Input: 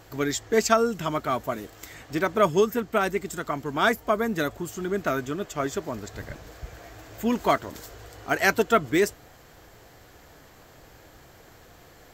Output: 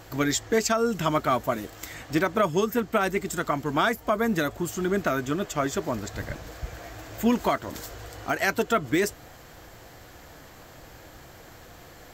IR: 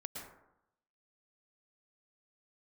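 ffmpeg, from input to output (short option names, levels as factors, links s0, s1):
-af "bandreject=f=420:w=12,alimiter=limit=0.141:level=0:latency=1:release=239,volume=1.58"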